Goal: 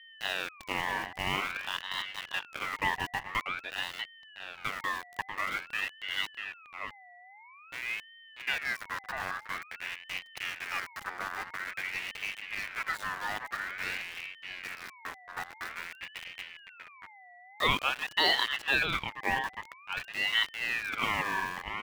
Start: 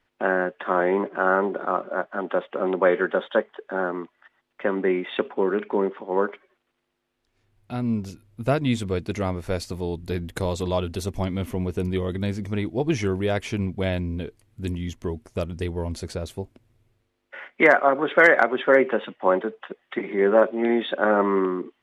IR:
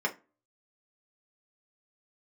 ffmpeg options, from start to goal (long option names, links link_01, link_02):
-filter_complex "[0:a]aeval=exprs='val(0)*gte(abs(val(0)),0.0562)':channel_layout=same,aeval=exprs='val(0)+0.0112*sin(2*PI*620*n/s)':channel_layout=same,asplit=2[link_01][link_02];[link_02]adelay=641.4,volume=-6dB,highshelf=frequency=4000:gain=-14.4[link_03];[link_01][link_03]amix=inputs=2:normalize=0,aeval=exprs='val(0)*sin(2*PI*1900*n/s+1900*0.3/0.49*sin(2*PI*0.49*n/s))':channel_layout=same,volume=-8.5dB"